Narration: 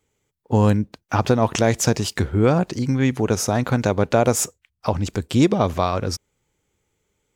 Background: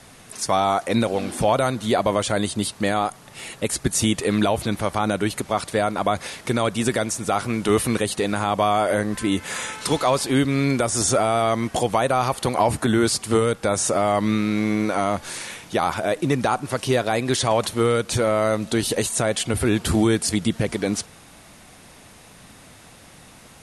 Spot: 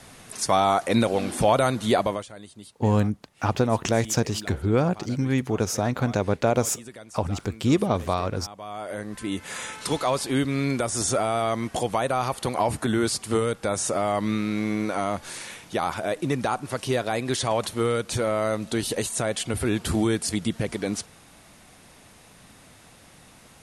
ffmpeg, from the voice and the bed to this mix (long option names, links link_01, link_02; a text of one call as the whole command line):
ffmpeg -i stem1.wav -i stem2.wav -filter_complex "[0:a]adelay=2300,volume=-4.5dB[link_01];[1:a]volume=15.5dB,afade=type=out:start_time=1.94:duration=0.33:silence=0.1,afade=type=in:start_time=8.59:duration=1.11:silence=0.158489[link_02];[link_01][link_02]amix=inputs=2:normalize=0" out.wav